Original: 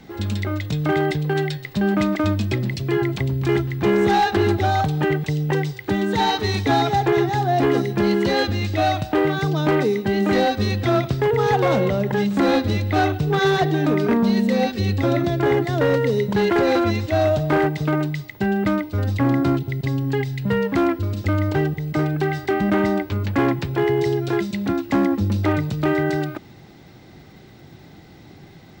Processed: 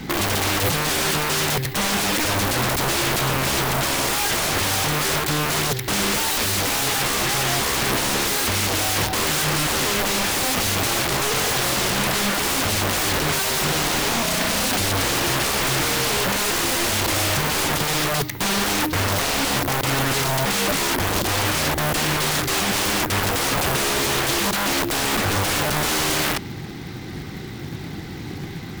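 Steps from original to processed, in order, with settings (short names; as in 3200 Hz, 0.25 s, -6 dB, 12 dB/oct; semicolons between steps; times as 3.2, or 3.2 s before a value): bell 610 Hz -11 dB 0.51 oct; in parallel at -3 dB: soft clip -18.5 dBFS, distortion -14 dB; on the sum: short-mantissa float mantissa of 2-bit; wrapped overs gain 24.5 dB; Doppler distortion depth 0.45 ms; gain +8.5 dB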